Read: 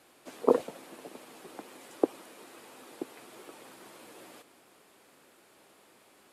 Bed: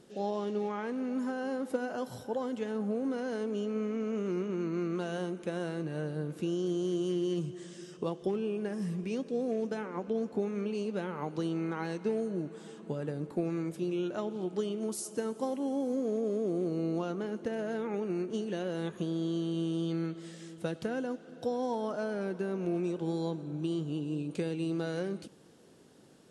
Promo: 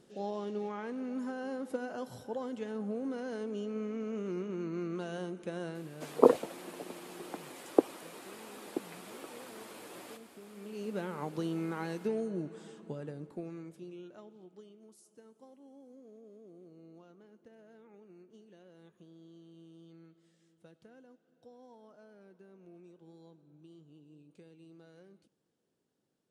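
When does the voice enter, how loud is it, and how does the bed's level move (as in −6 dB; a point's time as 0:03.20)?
5.75 s, +2.0 dB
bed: 0:05.69 −4 dB
0:06.28 −21 dB
0:10.42 −21 dB
0:10.92 −2 dB
0:12.59 −2 dB
0:14.86 −23 dB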